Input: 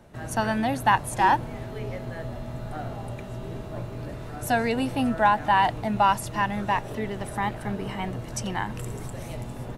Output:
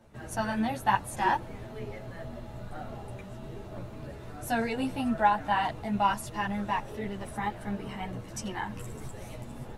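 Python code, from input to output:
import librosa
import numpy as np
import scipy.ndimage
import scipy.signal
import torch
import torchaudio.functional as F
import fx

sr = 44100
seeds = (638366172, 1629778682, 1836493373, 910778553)

y = fx.ensemble(x, sr)
y = y * 10.0 ** (-2.5 / 20.0)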